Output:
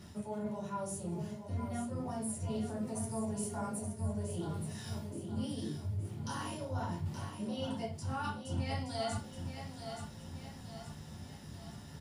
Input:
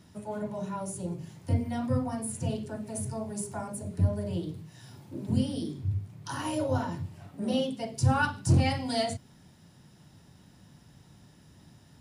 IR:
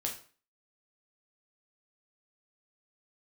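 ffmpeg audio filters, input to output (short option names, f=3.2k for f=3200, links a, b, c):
-filter_complex "[0:a]areverse,acompressor=threshold=-42dB:ratio=6,areverse,aecho=1:1:873|1746|2619|3492|4365:0.398|0.187|0.0879|0.0413|0.0194[a];[1:a]atrim=start_sample=2205,asetrate=70560,aresample=44100[b];[a][b]afir=irnorm=-1:irlink=0,volume=7.5dB"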